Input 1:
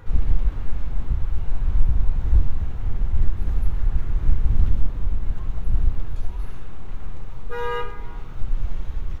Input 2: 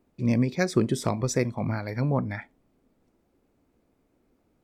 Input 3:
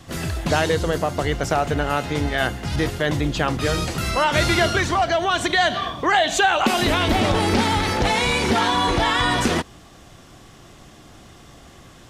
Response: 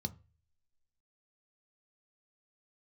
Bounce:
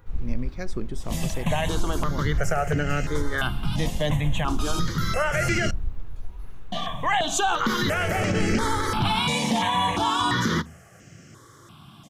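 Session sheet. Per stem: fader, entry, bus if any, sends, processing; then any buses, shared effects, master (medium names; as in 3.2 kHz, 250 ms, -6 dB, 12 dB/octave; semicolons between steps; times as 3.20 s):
-9.5 dB, 0.00 s, no send, treble shelf 10 kHz +8 dB
-10.0 dB, 0.00 s, no send, none
+1.0 dB, 1.00 s, muted 5.71–6.72 s, send -12 dB, high-pass 130 Hz; stepped phaser 2.9 Hz 380–3600 Hz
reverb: on, RT60 0.35 s, pre-delay 3 ms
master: peak limiter -13.5 dBFS, peak gain reduction 5 dB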